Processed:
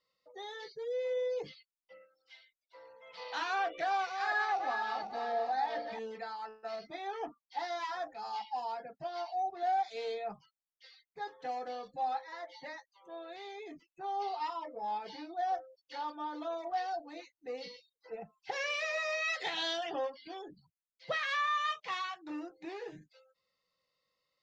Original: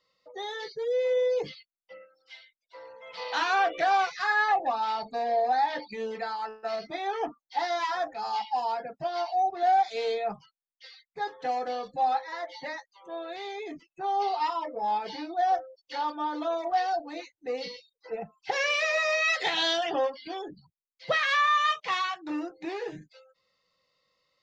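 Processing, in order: 3.83–5.99 s: backward echo that repeats 249 ms, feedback 56%, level -6 dB; trim -8.5 dB

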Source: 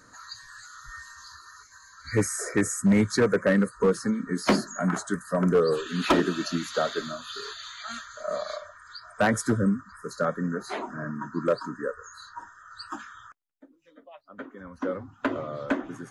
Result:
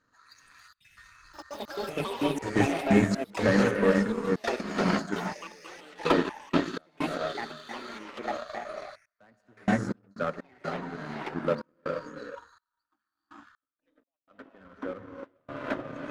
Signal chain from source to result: low-pass 4.3 kHz 12 dB/octave; gated-style reverb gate 490 ms rising, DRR 0 dB; trance gate "xxx.xxx...x.x.x" 62 bpm -24 dB; power-law waveshaper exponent 1.4; ever faster or slower copies 160 ms, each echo +6 st, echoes 3, each echo -6 dB

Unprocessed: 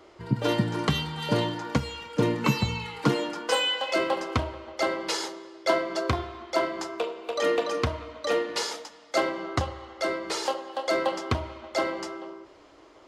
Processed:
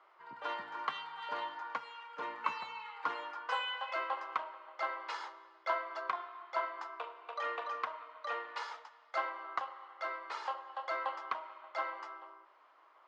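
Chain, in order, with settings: ladder band-pass 1.3 kHz, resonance 40%; trim +3.5 dB

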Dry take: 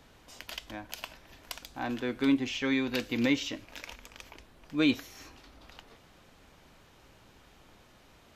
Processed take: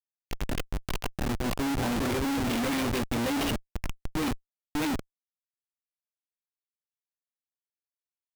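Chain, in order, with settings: spectral noise reduction 14 dB; on a send: reverse echo 625 ms -4 dB; on the sum: chorus voices 6, 0.53 Hz, delay 19 ms, depth 2.1 ms; Schmitt trigger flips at -36.5 dBFS; trim +8.5 dB

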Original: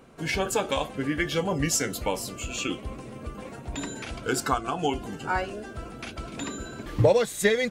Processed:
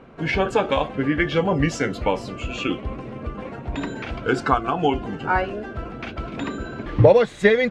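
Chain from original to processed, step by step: low-pass 2.7 kHz 12 dB/octave; trim +6.5 dB

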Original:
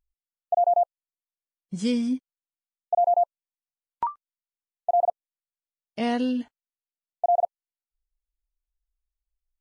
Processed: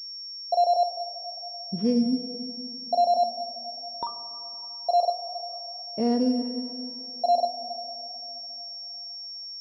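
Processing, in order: FFT filter 110 Hz 0 dB, 450 Hz +7 dB, 1.5 kHz -10 dB; in parallel at +1 dB: peak limiter -39 dBFS, peak gain reduction 27 dB; on the sum: plate-style reverb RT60 3.3 s, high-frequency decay 0.85×, DRR 8 dB; class-D stage that switches slowly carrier 5.5 kHz; trim -3 dB

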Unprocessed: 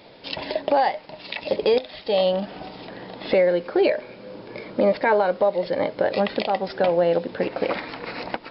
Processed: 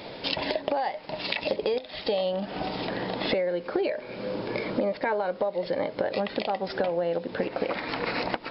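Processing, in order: compression 6:1, threshold -33 dBFS, peak gain reduction 17 dB; trim +7.5 dB

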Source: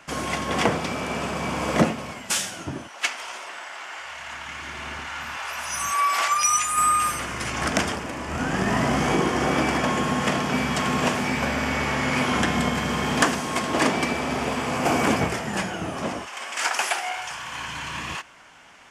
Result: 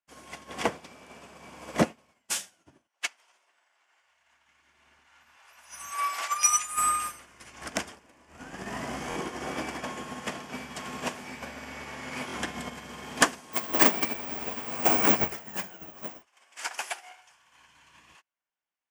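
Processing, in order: treble shelf 7.5 kHz +6 dB; 13.53–16.22 s: careless resampling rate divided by 2×, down none, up zero stuff; peaking EQ 120 Hz -5.5 dB 1.7 oct; band-stop 1.3 kHz, Q 21; buffer glitch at 9.09/12.27 s, samples 1024, times 2; upward expansion 2.5:1, over -45 dBFS

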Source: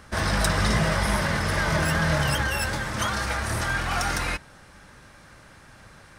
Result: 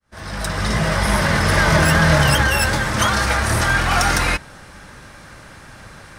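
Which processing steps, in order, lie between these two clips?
fade-in on the opening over 1.54 s; trim +9 dB

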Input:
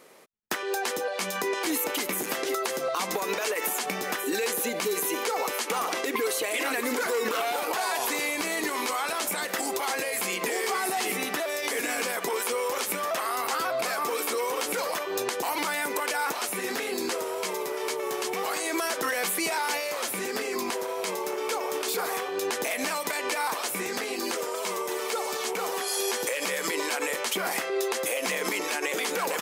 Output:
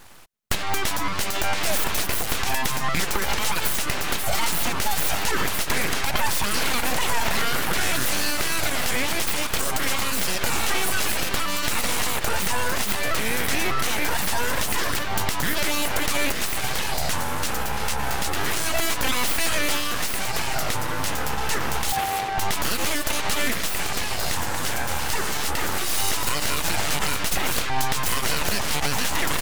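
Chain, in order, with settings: full-wave rectifier; 21.92–22.38 s: ring modulator 780 Hz; trim +8 dB

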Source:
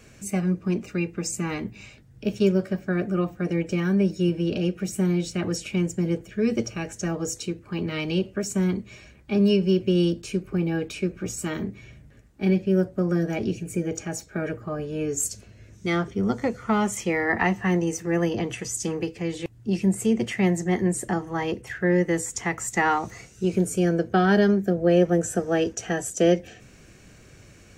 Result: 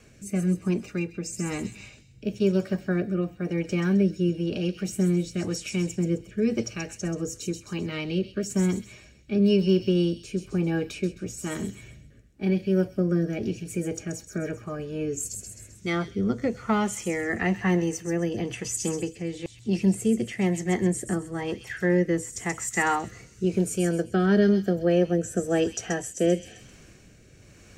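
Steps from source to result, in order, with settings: feedback echo behind a high-pass 131 ms, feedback 41%, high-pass 3.9 kHz, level -5 dB; rotary cabinet horn 1 Hz

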